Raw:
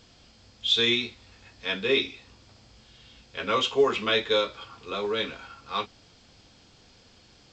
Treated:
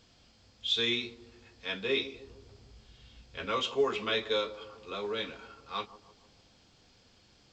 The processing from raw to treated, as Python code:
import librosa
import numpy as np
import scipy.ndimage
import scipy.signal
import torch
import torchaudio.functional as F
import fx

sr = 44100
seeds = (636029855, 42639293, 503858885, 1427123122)

y = fx.low_shelf(x, sr, hz=130.0, db=10.5, at=(2.14, 3.46))
y = fx.echo_bbd(y, sr, ms=151, stages=1024, feedback_pct=53, wet_db=-15.0)
y = F.gain(torch.from_numpy(y), -6.5).numpy()